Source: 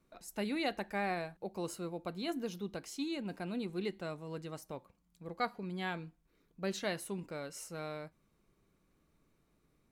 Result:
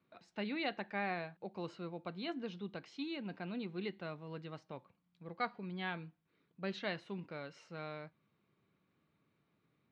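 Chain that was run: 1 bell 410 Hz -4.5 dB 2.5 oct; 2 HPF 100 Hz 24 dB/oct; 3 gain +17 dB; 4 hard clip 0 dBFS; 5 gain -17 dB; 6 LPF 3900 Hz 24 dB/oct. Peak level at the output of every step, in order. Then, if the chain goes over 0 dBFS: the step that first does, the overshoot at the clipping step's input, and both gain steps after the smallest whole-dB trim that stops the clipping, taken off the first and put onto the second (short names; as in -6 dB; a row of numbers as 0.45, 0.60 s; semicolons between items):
-24.0, -23.0, -6.0, -6.0, -23.0, -23.5 dBFS; no overload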